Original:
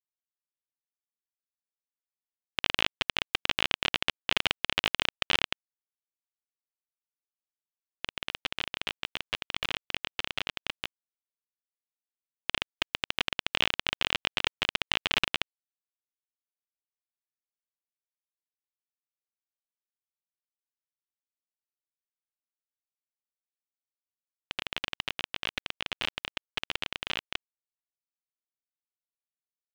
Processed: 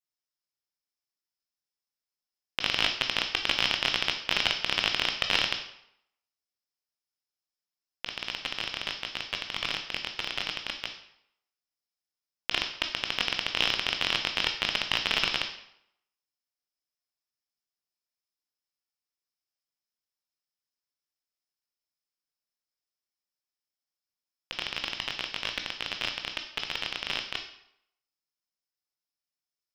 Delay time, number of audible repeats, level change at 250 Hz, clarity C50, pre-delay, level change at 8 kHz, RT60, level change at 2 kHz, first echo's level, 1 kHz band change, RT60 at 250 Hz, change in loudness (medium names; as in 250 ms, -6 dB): no echo, no echo, +0.5 dB, 9.0 dB, 15 ms, +3.0 dB, 0.75 s, +1.5 dB, no echo, +1.0 dB, 0.70 s, +2.0 dB